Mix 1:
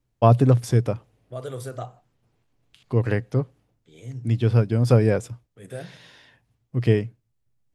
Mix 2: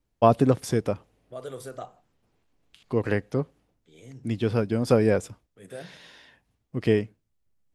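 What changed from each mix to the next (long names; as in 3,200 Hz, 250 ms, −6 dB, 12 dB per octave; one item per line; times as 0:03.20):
second voice −3.0 dB
master: add parametric band 120 Hz −13 dB 0.32 octaves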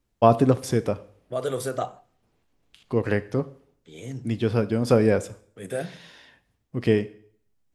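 second voice +9.5 dB
reverb: on, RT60 0.60 s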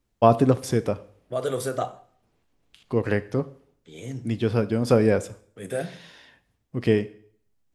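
second voice: send +8.0 dB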